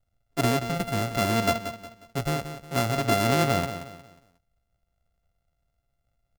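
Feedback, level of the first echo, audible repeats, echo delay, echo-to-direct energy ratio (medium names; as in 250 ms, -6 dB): 35%, -10.5 dB, 3, 180 ms, -10.0 dB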